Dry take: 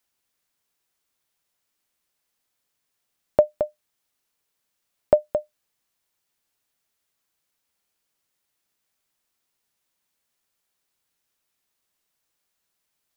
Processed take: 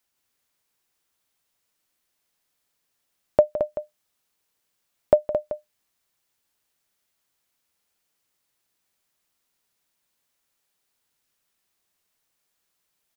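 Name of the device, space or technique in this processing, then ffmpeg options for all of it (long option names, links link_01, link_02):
ducked delay: -filter_complex "[0:a]asplit=3[link_01][link_02][link_03];[link_02]adelay=163,volume=-3dB[link_04];[link_03]apad=whole_len=587884[link_05];[link_04][link_05]sidechaincompress=threshold=-28dB:ratio=8:attack=10:release=317[link_06];[link_01][link_06]amix=inputs=2:normalize=0"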